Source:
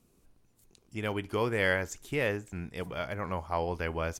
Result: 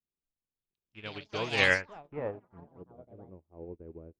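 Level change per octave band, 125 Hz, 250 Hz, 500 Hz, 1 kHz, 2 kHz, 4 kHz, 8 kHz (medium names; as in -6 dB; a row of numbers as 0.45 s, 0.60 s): -8.0 dB, -7.0 dB, -5.0 dB, -5.5 dB, +2.5 dB, +5.0 dB, -5.0 dB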